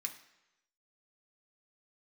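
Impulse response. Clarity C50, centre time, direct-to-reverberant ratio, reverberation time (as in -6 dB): 11.0 dB, 12 ms, 2.5 dB, no single decay rate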